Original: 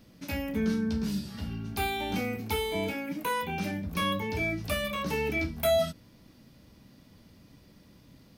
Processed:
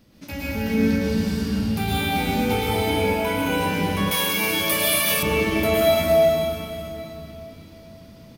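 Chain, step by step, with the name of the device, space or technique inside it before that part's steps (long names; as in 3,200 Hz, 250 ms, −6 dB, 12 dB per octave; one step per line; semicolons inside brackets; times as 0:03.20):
cave (single-tap delay 223 ms −8.5 dB; convolution reverb RT60 3.6 s, pre-delay 101 ms, DRR −7.5 dB)
0:04.11–0:05.23: RIAA equalisation recording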